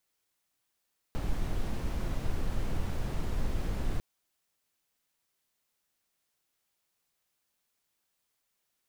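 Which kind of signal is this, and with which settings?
noise brown, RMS -29.5 dBFS 2.85 s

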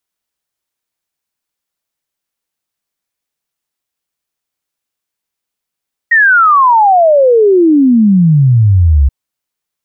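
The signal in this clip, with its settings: log sweep 1.9 kHz -> 65 Hz 2.98 s -4 dBFS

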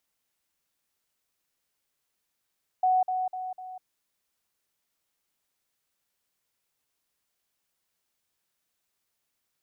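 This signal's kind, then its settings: level ladder 742 Hz -19.5 dBFS, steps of -6 dB, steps 4, 0.20 s 0.05 s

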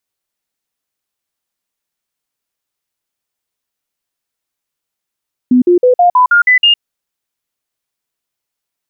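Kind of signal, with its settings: stepped sine 250 Hz up, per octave 2, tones 8, 0.11 s, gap 0.05 s -4.5 dBFS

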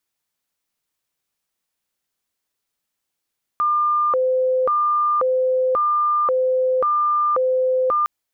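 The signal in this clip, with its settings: siren hi-lo 514–1200 Hz 0.93 per s sine -15.5 dBFS 4.46 s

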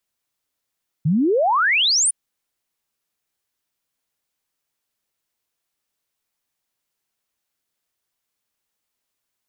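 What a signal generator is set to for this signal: log sweep 140 Hz -> 10 kHz 1.06 s -14.5 dBFS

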